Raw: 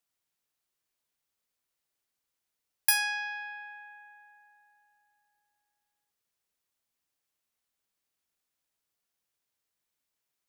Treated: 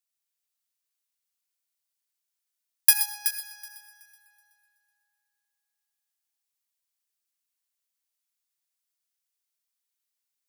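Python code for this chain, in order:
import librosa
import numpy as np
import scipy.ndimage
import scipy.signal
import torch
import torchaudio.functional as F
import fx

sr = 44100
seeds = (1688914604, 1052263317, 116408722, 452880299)

y = fx.median_filter(x, sr, points=15, at=(2.93, 4.21))
y = fx.highpass(y, sr, hz=1200.0, slope=6)
y = fx.high_shelf(y, sr, hz=3600.0, db=8.0)
y = fx.echo_heads(y, sr, ms=125, heads='first and third', feedback_pct=42, wet_db=-7)
y = fx.rev_gated(y, sr, seeds[0], gate_ms=120, shape='rising', drr_db=7.5)
y = fx.upward_expand(y, sr, threshold_db=-31.0, expansion=1.5)
y = F.gain(torch.from_numpy(y), 1.0).numpy()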